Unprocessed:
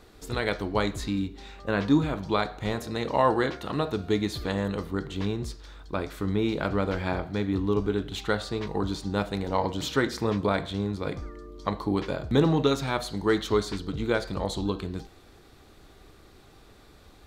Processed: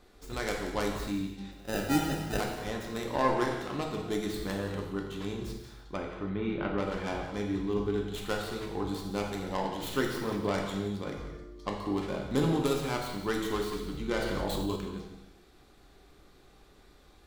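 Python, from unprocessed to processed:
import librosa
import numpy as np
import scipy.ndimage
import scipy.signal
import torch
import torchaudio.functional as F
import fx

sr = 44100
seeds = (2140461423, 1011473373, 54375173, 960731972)

y = fx.tracing_dist(x, sr, depth_ms=0.23)
y = fx.sample_hold(y, sr, seeds[0], rate_hz=1100.0, jitter_pct=0, at=(1.51, 2.4))
y = fx.lowpass(y, sr, hz=3100.0, slope=24, at=(5.97, 6.78))
y = y + 10.0 ** (-14.5 / 20.0) * np.pad(y, (int(178 * sr / 1000.0), 0))[:len(y)]
y = fx.rev_gated(y, sr, seeds[1], gate_ms=350, shape='falling', drr_db=1.0)
y = fx.env_flatten(y, sr, amount_pct=70, at=(14.17, 14.76))
y = F.gain(torch.from_numpy(y), -7.5).numpy()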